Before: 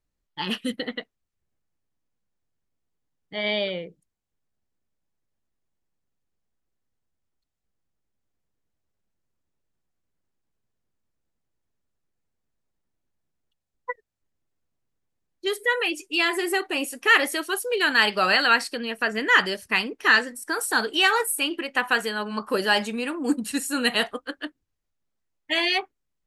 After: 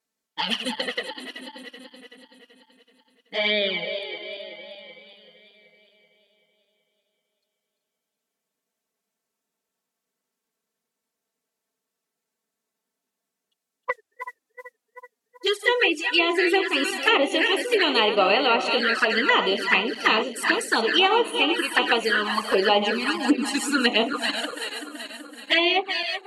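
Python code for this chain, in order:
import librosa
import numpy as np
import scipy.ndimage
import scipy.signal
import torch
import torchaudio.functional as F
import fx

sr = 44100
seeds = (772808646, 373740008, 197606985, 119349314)

y = fx.reverse_delay_fb(x, sr, ms=190, feedback_pct=73, wet_db=-9.0)
y = fx.mod_noise(y, sr, seeds[0], snr_db=28, at=(13.91, 15.87), fade=0.02)
y = scipy.signal.sosfilt(scipy.signal.butter(2, 290.0, 'highpass', fs=sr, output='sos'), y)
y = fx.high_shelf(y, sr, hz=6100.0, db=5.5)
y = fx.quant_dither(y, sr, seeds[1], bits=8, dither='none', at=(21.73, 23.02))
y = fx.env_flanger(y, sr, rest_ms=4.5, full_db=-19.0)
y = fx.env_lowpass_down(y, sr, base_hz=2100.0, full_db=-20.0)
y = y * librosa.db_to_amplitude(7.0)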